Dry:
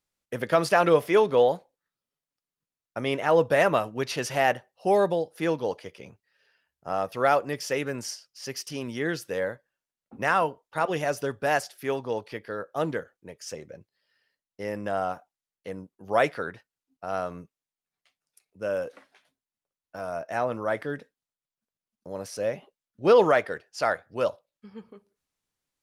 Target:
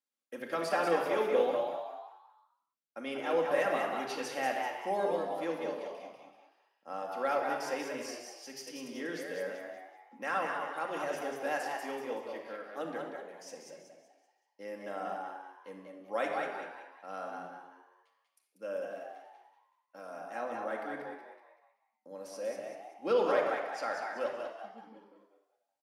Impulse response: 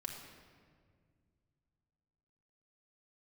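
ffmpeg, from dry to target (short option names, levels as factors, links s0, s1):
-filter_complex "[0:a]highpass=f=210:w=0.5412,highpass=f=210:w=1.3066,asplit=6[s0][s1][s2][s3][s4][s5];[s1]adelay=190,afreqshift=94,volume=0.562[s6];[s2]adelay=380,afreqshift=188,volume=0.209[s7];[s3]adelay=570,afreqshift=282,volume=0.0767[s8];[s4]adelay=760,afreqshift=376,volume=0.0285[s9];[s5]adelay=950,afreqshift=470,volume=0.0106[s10];[s0][s6][s7][s8][s9][s10]amix=inputs=6:normalize=0[s11];[1:a]atrim=start_sample=2205,afade=t=out:st=0.32:d=0.01,atrim=end_sample=14553[s12];[s11][s12]afir=irnorm=-1:irlink=0,volume=0.398"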